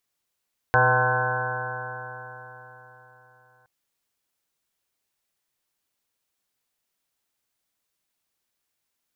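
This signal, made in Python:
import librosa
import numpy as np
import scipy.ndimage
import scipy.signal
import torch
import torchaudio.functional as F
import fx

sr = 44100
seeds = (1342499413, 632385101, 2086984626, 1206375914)

y = fx.additive_stiff(sr, length_s=2.92, hz=123.0, level_db=-23.5, upper_db=(-17, -13.0, 0, -5.0, 2, -3.5, 1.0, -16.0, -6.0, 4.5, -6.5), decay_s=3.99, stiffness=0.0021)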